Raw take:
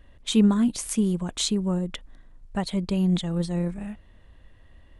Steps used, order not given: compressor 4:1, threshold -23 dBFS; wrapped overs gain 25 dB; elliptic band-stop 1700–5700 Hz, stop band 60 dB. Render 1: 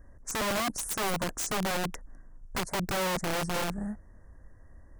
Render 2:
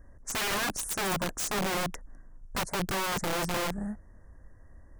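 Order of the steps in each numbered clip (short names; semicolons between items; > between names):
compressor > elliptic band-stop > wrapped overs; elliptic band-stop > wrapped overs > compressor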